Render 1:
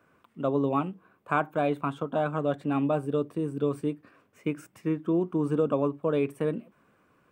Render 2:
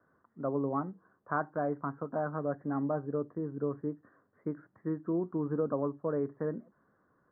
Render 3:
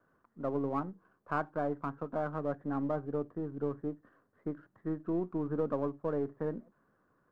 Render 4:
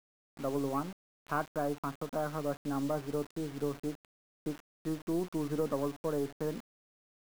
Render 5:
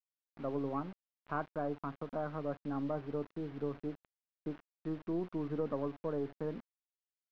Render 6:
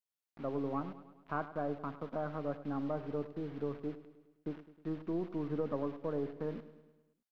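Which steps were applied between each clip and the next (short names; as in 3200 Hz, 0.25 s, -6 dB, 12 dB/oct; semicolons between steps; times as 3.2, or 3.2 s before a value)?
steep low-pass 1900 Hz 96 dB/oct; gain -6 dB
half-wave gain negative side -3 dB
requantised 8-bit, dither none
air absorption 320 m; gain -2.5 dB
feedback echo 0.104 s, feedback 56%, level -14.5 dB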